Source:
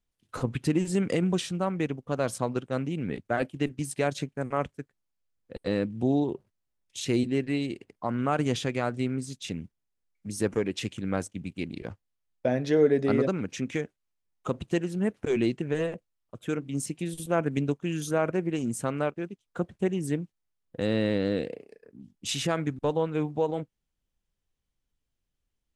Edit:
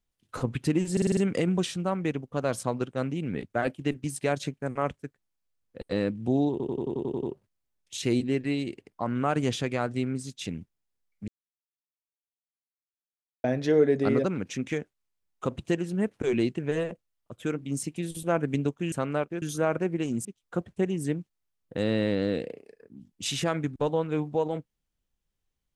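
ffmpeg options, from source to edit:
-filter_complex "[0:a]asplit=19[s0][s1][s2][s3][s4][s5][s6][s7][s8][s9][s10][s11][s12][s13][s14][s15][s16][s17][s18];[s0]atrim=end=0.972[s19];[s1]atrim=start=0.918:end=0.972[s20];[s2]atrim=start=0.918:end=0.972[s21];[s3]atrim=start=0.918:end=0.972[s22];[s4]atrim=start=0.918:end=0.972[s23];[s5]atrim=start=0.918:end=6.352[s24];[s6]atrim=start=6.258:end=6.352[s25];[s7]atrim=start=6.258:end=6.352[s26];[s8]atrim=start=6.258:end=6.352[s27];[s9]atrim=start=6.258:end=6.352[s28];[s10]atrim=start=6.258:end=6.352[s29];[s11]atrim=start=6.258:end=6.352[s30];[s12]atrim=start=6.258:end=6.352[s31];[s13]atrim=start=6.258:end=10.31,asetpts=PTS-STARTPTS,afade=t=out:st=4.048:d=0.004:c=hsin[s32];[s14]atrim=start=10.31:end=12.47,asetpts=PTS-STARTPTS,volume=0[s33];[s15]atrim=start=12.47:end=17.952,asetpts=PTS-STARTPTS,afade=t=in:d=0.004:c=hsin[s34];[s16]atrim=start=18.778:end=19.282[s35];[s17]atrim=start=17.948:end=18.782[s36];[s18]atrim=start=19.278[s37];[s19][s20]acrossfade=d=0.004:c1=hsin:c2=hsin[s38];[s38][s21]acrossfade=d=0.004:c1=hsin:c2=hsin[s39];[s39][s22]acrossfade=d=0.004:c1=hsin:c2=hsin[s40];[s40][s23]acrossfade=d=0.004:c1=hsin:c2=hsin[s41];[s41][s24]acrossfade=d=0.004:c1=hsin:c2=hsin[s42];[s42][s25]acrossfade=d=0.004:c1=hsin:c2=hsin[s43];[s43][s26]acrossfade=d=0.004:c1=hsin:c2=hsin[s44];[s44][s27]acrossfade=d=0.004:c1=hsin:c2=hsin[s45];[s45][s28]acrossfade=d=0.004:c1=hsin:c2=hsin[s46];[s46][s29]acrossfade=d=0.004:c1=hsin:c2=hsin[s47];[s47][s30]acrossfade=d=0.004:c1=hsin:c2=hsin[s48];[s48][s31]acrossfade=d=0.004:c1=hsin:c2=hsin[s49];[s32][s33][s34]concat=n=3:v=0:a=1[s50];[s49][s50]acrossfade=d=0.004:c1=hsin:c2=hsin[s51];[s51][s35]acrossfade=d=0.004:c1=hsin:c2=hsin[s52];[s52][s36]acrossfade=d=0.004:c1=hsin:c2=hsin[s53];[s53][s37]acrossfade=d=0.004:c1=hsin:c2=hsin"

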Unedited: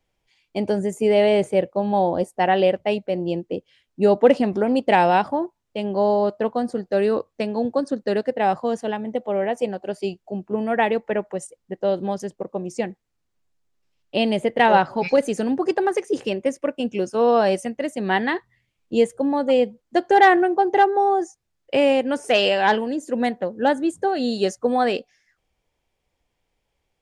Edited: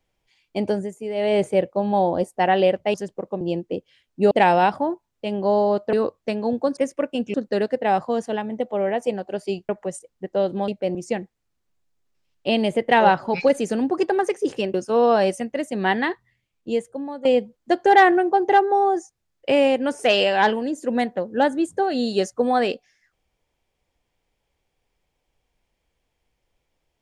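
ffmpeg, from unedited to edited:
-filter_complex "[0:a]asplit=14[s0][s1][s2][s3][s4][s5][s6][s7][s8][s9][s10][s11][s12][s13];[s0]atrim=end=0.95,asetpts=PTS-STARTPTS,afade=t=out:st=0.69:d=0.26:silence=0.281838[s14];[s1]atrim=start=0.95:end=1.14,asetpts=PTS-STARTPTS,volume=0.282[s15];[s2]atrim=start=1.14:end=2.942,asetpts=PTS-STARTPTS,afade=t=in:d=0.26:silence=0.281838[s16];[s3]atrim=start=12.158:end=12.632[s17];[s4]atrim=start=3.208:end=4.112[s18];[s5]atrim=start=4.828:end=6.452[s19];[s6]atrim=start=7.048:end=7.892[s20];[s7]atrim=start=16.418:end=16.992[s21];[s8]atrim=start=7.888:end=10.242[s22];[s9]atrim=start=11.168:end=12.162[s23];[s10]atrim=start=2.938:end=3.212[s24];[s11]atrim=start=12.628:end=16.422[s25];[s12]atrim=start=16.988:end=19.5,asetpts=PTS-STARTPTS,afade=t=out:st=1.292:d=1.22:silence=0.211349[s26];[s13]atrim=start=19.5,asetpts=PTS-STARTPTS,afade=t=in:d=0.004:c=hsin:silence=0.211349[s27];[s14][s15][s16]concat=n=3:v=0:a=1[s28];[s28][s17]acrossfade=d=0.004:c1=hsin:c2=hsin[s29];[s29][s18]acrossfade=d=0.004:c1=hsin:c2=hsin[s30];[s30][s19]acrossfade=d=0.004:c1=hsin:c2=hsin[s31];[s31][s20]acrossfade=d=0.004:c1=hsin:c2=hsin[s32];[s32][s21]acrossfade=d=0.004:c1=hsin:c2=hsin[s33];[s33][s22]acrossfade=d=0.004:c1=hsin:c2=hsin[s34];[s34][s23]acrossfade=d=0.004:c1=hsin:c2=hsin[s35];[s35][s24]acrossfade=d=0.004:c1=hsin:c2=hsin[s36];[s36][s25]acrossfade=d=0.004:c1=hsin:c2=hsin[s37];[s26][s27]concat=n=2:v=0:a=1[s38];[s37][s38]acrossfade=d=0.004:c1=hsin:c2=hsin"

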